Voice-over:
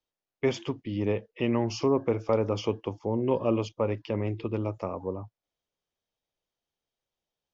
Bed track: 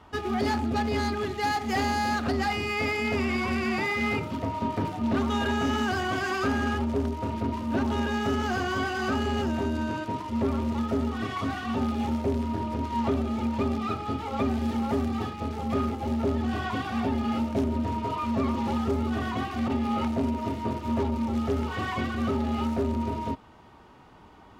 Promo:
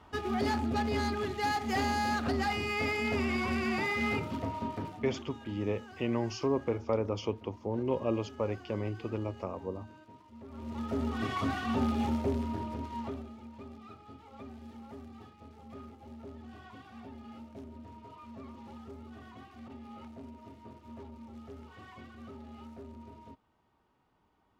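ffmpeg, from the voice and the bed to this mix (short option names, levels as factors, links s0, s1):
-filter_complex "[0:a]adelay=4600,volume=0.562[s0];[1:a]volume=7.08,afade=t=out:st=4.33:d=0.93:silence=0.112202,afade=t=in:st=10.49:d=0.79:silence=0.0891251,afade=t=out:st=11.96:d=1.41:silence=0.11885[s1];[s0][s1]amix=inputs=2:normalize=0"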